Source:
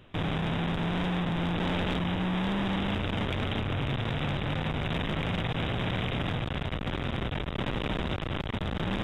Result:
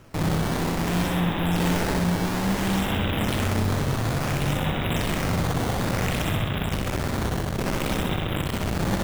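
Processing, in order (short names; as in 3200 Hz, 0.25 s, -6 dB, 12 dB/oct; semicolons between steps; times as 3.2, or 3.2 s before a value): decimation with a swept rate 10×, swing 160% 0.58 Hz; flutter echo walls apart 10.8 m, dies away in 0.79 s; gain +4 dB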